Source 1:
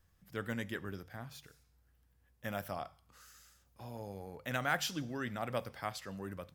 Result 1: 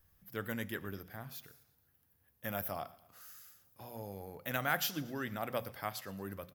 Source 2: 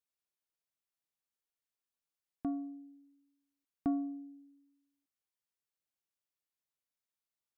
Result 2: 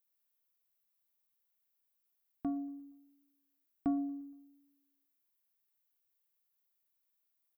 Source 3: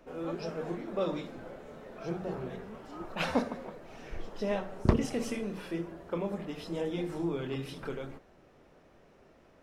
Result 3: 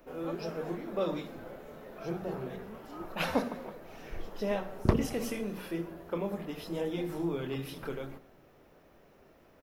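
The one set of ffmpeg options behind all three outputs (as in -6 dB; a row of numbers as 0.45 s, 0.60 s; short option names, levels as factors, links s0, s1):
-af "aexciter=amount=4.3:drive=5.4:freq=11000,bandreject=f=60:t=h:w=6,bandreject=f=120:t=h:w=6,bandreject=f=180:t=h:w=6,bandreject=f=240:t=h:w=6,aecho=1:1:117|234|351|468:0.0794|0.0421|0.0223|0.0118"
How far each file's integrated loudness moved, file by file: +0.5 LU, 0.0 LU, -0.5 LU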